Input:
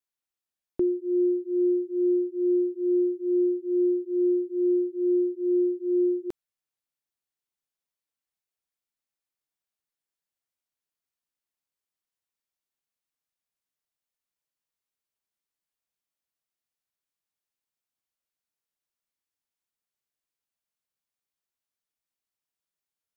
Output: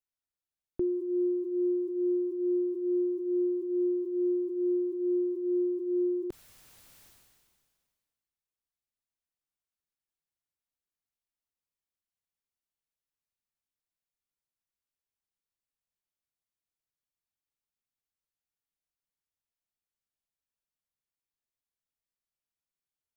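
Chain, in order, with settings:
low-shelf EQ 150 Hz +11.5 dB
level that may fall only so fast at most 31 dB per second
level −7 dB

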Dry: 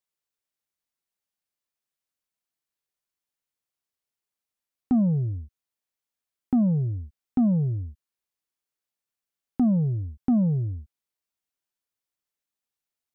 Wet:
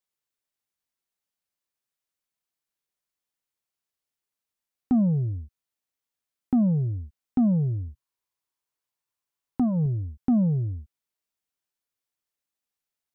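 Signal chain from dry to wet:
0:07.87–0:09.86: thirty-one-band graphic EQ 125 Hz +5 dB, 200 Hz −6 dB, 1,000 Hz +8 dB

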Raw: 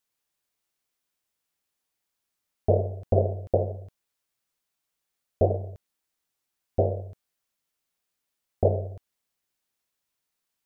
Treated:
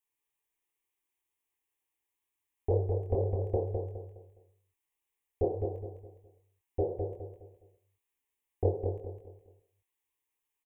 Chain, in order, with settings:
phaser with its sweep stopped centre 940 Hz, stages 8
chorus effect 2.1 Hz, delay 19.5 ms, depth 7.2 ms
repeating echo 207 ms, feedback 34%, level −5.5 dB

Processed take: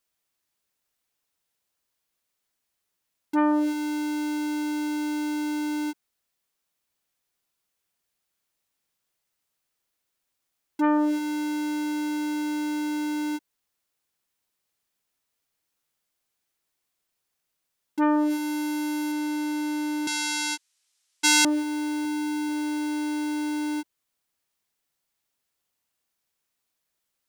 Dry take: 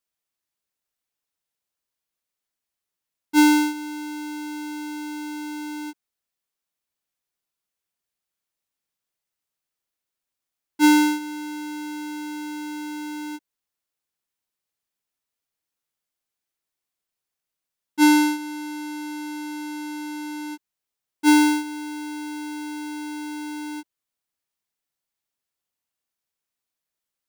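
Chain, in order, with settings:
0:18.30–0:19.12: high-shelf EQ 7,900 Hz +5.5 dB
0:22.05–0:22.49: high-pass filter 49 Hz
downward compressor 1.5 to 1, threshold −29 dBFS, peak gain reduction 5.5 dB
0:20.07–0:21.45: meter weighting curve ITU-R 468
boost into a limiter +7.5 dB
saturating transformer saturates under 2,100 Hz
level −2 dB

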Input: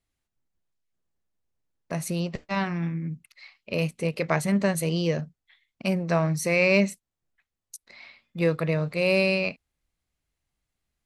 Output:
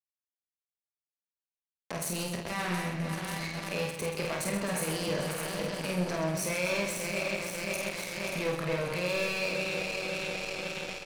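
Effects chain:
feedback delay that plays each chunk backwards 268 ms, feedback 75%, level −11.5 dB
high-pass filter 68 Hz 24 dB per octave
high-shelf EQ 4,900 Hz +5 dB
leveller curve on the samples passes 3
downward compressor 6 to 1, threshold −24 dBFS, peak gain reduction 12 dB
low-shelf EQ 240 Hz −4.5 dB
double-tracking delay 28 ms −8 dB
brickwall limiter −22.5 dBFS, peak gain reduction 9 dB
power curve on the samples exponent 2
reverse bouncing-ball delay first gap 50 ms, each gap 1.6×, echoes 5

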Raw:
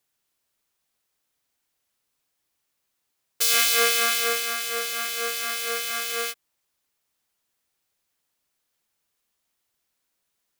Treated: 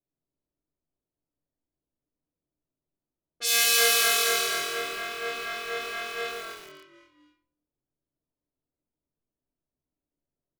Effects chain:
low-pass that shuts in the quiet parts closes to 490 Hz, open at −18 dBFS
parametric band 1,500 Hz −2.5 dB 2.6 octaves
echo with shifted repeats 250 ms, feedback 38%, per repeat −42 Hz, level −7.5 dB
rectangular room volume 780 cubic metres, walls furnished, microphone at 2.8 metres
feedback echo at a low word length 138 ms, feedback 55%, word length 6 bits, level −4 dB
level −4 dB

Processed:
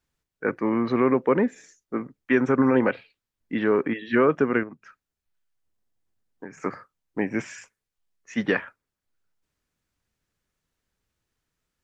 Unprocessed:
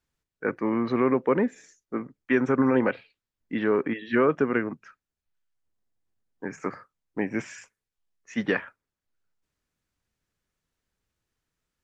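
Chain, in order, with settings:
0:04.63–0:06.57: downward compressor 6 to 1, threshold −38 dBFS, peak gain reduction 11 dB
level +2 dB

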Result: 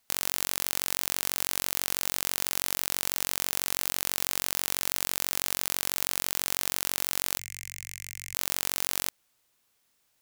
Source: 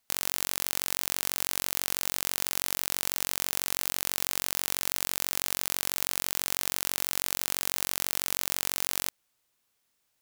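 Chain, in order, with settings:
0:07.39–0:08.35: drawn EQ curve 110 Hz 0 dB, 270 Hz −28 dB, 1,400 Hz −26 dB, 2,100 Hz −3 dB, 3,600 Hz −21 dB, 7,000 Hz −9 dB, 11,000 Hz −17 dB
in parallel at −8 dB: wrap-around overflow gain 13 dB
on the sum: level +1 dB

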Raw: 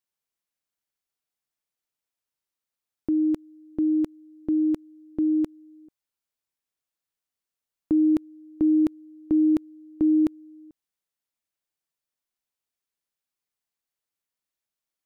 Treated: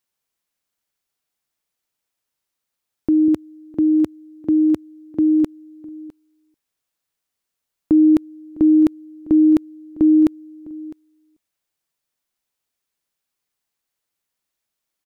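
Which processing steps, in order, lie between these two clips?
0:03.28–0:05.44: high-pass filter 71 Hz 24 dB per octave
single-tap delay 656 ms −20.5 dB
level +7.5 dB

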